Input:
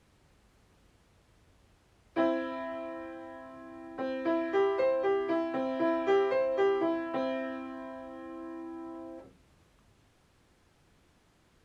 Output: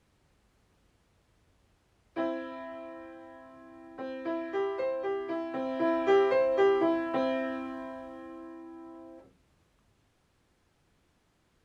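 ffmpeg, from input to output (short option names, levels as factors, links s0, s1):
-af "volume=1.41,afade=t=in:st=5.38:d=0.81:silence=0.446684,afade=t=out:st=7.66:d=0.93:silence=0.421697"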